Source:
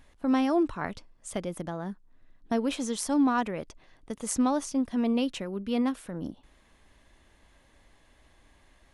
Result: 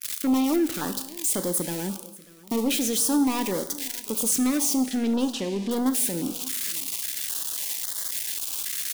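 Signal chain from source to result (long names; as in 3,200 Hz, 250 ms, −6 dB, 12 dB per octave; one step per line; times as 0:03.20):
spike at every zero crossing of −22 dBFS
noise gate −43 dBFS, range −26 dB
in parallel at +1 dB: brickwall limiter −21 dBFS, peak gain reduction 8 dB
on the sum: high-pass filter 220 Hz 12 dB per octave
parametric band 660 Hz −10.5 dB 0.3 octaves
leveller curve on the samples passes 3
0:04.83–0:05.71: low-pass filter 5,200 Hz 12 dB per octave
single-tap delay 590 ms −21 dB
on a send at −9 dB: convolution reverb, pre-delay 3 ms
on the sum: notch on a step sequencer 3.7 Hz 880–2,500 Hz
level −8 dB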